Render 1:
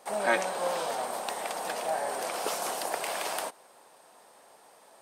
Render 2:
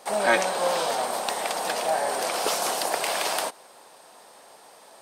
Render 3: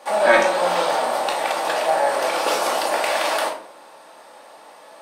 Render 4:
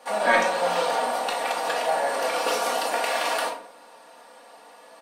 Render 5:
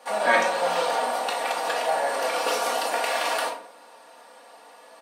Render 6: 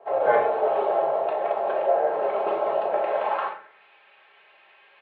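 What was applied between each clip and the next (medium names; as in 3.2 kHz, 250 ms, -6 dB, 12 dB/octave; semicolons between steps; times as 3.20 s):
peaking EQ 4.4 kHz +4 dB 1.2 oct; in parallel at -5.5 dB: overload inside the chain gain 22.5 dB; on the sum: trim +2 dB
tone controls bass -11 dB, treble -8 dB; simulated room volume 540 m³, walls furnished, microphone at 2.4 m; trim +3.5 dB
comb 4.2 ms, depth 64%; trim -5 dB
high-pass 200 Hz 6 dB/octave
band-pass sweep 750 Hz -> 2.5 kHz, 3.19–3.84 s; mistuned SSB -100 Hz 170–3600 Hz; trim +5 dB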